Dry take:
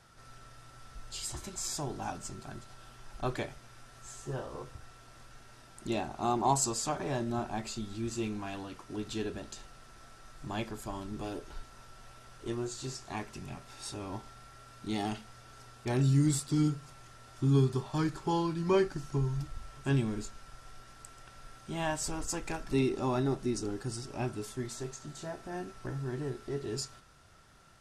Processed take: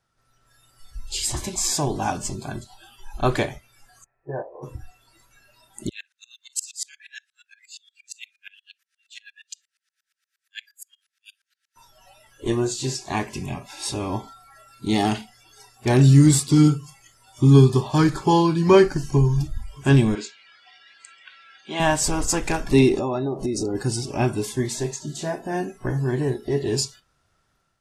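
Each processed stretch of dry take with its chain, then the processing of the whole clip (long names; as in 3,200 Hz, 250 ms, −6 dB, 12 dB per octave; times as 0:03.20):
0:04.04–0:04.63: noise gate −40 dBFS, range −7 dB + Chebyshev low-pass with heavy ripple 2,600 Hz, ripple 9 dB + parametric band 230 Hz −4.5 dB 0.42 octaves
0:05.89–0:11.76: Chebyshev high-pass filter 1,600 Hz, order 5 + tremolo with a ramp in dB swelling 8.5 Hz, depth 33 dB
0:20.15–0:21.80: band-pass filter 290–4,500 Hz + tilt shelving filter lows −4 dB, about 1,100 Hz
0:22.98–0:23.75: parametric band 530 Hz +6.5 dB 1.3 octaves + downward compressor 10 to 1, threshold −34 dBFS
whole clip: noise reduction from a noise print of the clip's start 21 dB; automatic gain control gain up to 6 dB; level +7 dB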